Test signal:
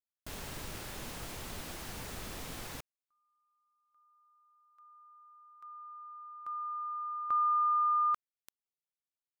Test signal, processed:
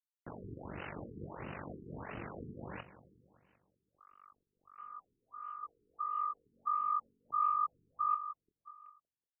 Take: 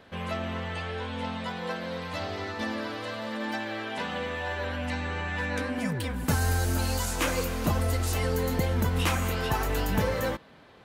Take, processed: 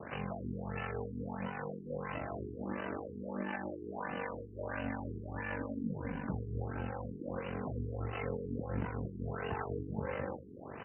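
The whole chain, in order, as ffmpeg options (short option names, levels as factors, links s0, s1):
-filter_complex "[0:a]acrossover=split=5400[s0][s1];[s1]acompressor=threshold=0.00708:ratio=4:attack=1:release=60[s2];[s0][s2]amix=inputs=2:normalize=0,highpass=f=89:w=0.5412,highpass=f=89:w=1.3066,aeval=exprs='val(0)*sin(2*PI*24*n/s)':c=same,acompressor=threshold=0.00501:ratio=4:attack=0.14:release=355:knee=1:detection=peak,bandreject=f=256.4:t=h:w=4,bandreject=f=512.8:t=h:w=4,bandreject=f=769.2:t=h:w=4,bandreject=f=1025.6:t=h:w=4,bandreject=f=1282:t=h:w=4,bandreject=f=1538.4:t=h:w=4,bandreject=f=1794.8:t=h:w=4,bandreject=f=2051.2:t=h:w=4,bandreject=f=2307.6:t=h:w=4,bandreject=f=2564:t=h:w=4,bandreject=f=2820.4:t=h:w=4,bandreject=f=3076.8:t=h:w=4,bandreject=f=3333.2:t=h:w=4,acrusher=bits=10:mix=0:aa=0.000001,acrossover=split=600[s3][s4];[s3]aeval=exprs='val(0)*(1-0.5/2+0.5/2*cos(2*PI*4.1*n/s))':c=same[s5];[s4]aeval=exprs='val(0)*(1-0.5/2-0.5/2*cos(2*PI*4.1*n/s))':c=same[s6];[s5][s6]amix=inputs=2:normalize=0,asplit=2[s7][s8];[s8]adelay=26,volume=0.282[s9];[s7][s9]amix=inputs=2:normalize=0,aecho=1:1:188|376|564|752|940|1128:0.188|0.113|0.0678|0.0407|0.0244|0.0146,afftfilt=real='re*lt(b*sr/1024,440*pow(3100/440,0.5+0.5*sin(2*PI*1.5*pts/sr)))':imag='im*lt(b*sr/1024,440*pow(3100/440,0.5+0.5*sin(2*PI*1.5*pts/sr)))':win_size=1024:overlap=0.75,volume=5.01"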